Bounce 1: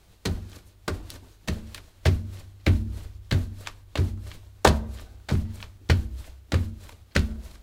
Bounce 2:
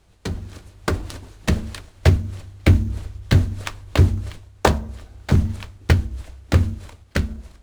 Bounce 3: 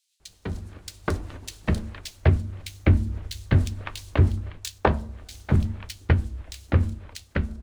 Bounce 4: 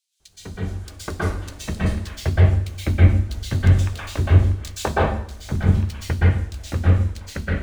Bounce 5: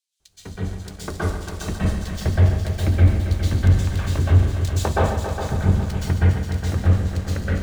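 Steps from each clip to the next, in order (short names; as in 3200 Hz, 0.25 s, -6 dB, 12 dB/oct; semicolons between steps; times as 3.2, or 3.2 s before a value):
LPF 11000 Hz 24 dB/oct; AGC gain up to 13 dB; in parallel at -8 dB: sample-rate reducer 6400 Hz, jitter 20%; on the sum: gain -3 dB
bands offset in time highs, lows 0.2 s, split 3100 Hz; gain -4 dB
plate-style reverb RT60 0.55 s, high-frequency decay 0.95×, pre-delay 0.11 s, DRR -7.5 dB; gain -4.5 dB
dynamic EQ 2200 Hz, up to -4 dB, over -43 dBFS, Q 1.3; multi-head echo 0.137 s, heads all three, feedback 57%, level -12 dB; sample leveller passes 1; gain -4 dB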